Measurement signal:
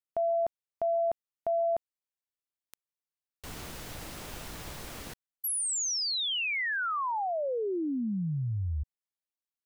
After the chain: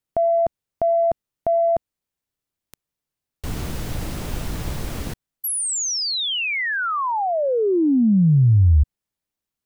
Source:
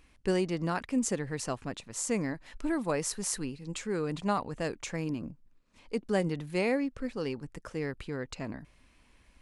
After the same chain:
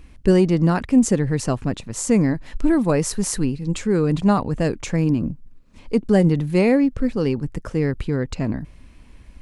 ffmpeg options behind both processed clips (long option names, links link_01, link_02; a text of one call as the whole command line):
ffmpeg -i in.wav -af "lowshelf=frequency=360:gain=12,acontrast=79" out.wav